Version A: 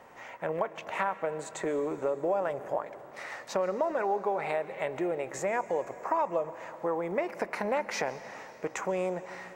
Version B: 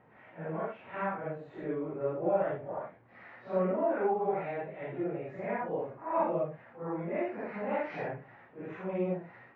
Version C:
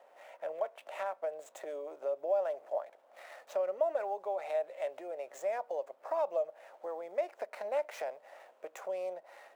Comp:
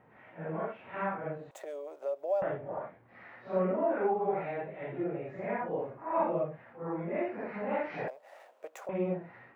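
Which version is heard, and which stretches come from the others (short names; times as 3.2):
B
1.51–2.42 from C
8.08–8.89 from C
not used: A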